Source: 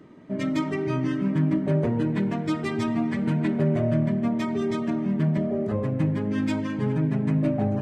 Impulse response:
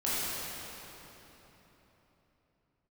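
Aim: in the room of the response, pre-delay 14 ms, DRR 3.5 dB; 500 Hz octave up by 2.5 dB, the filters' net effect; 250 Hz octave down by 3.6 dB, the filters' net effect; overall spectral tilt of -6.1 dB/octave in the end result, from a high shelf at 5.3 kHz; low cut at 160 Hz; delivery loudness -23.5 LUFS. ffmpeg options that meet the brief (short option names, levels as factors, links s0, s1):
-filter_complex "[0:a]highpass=160,equalizer=f=250:t=o:g=-4.5,equalizer=f=500:t=o:g=5,highshelf=f=5300:g=-4,asplit=2[s0][s1];[1:a]atrim=start_sample=2205,adelay=14[s2];[s1][s2]afir=irnorm=-1:irlink=0,volume=0.224[s3];[s0][s3]amix=inputs=2:normalize=0,volume=1.26"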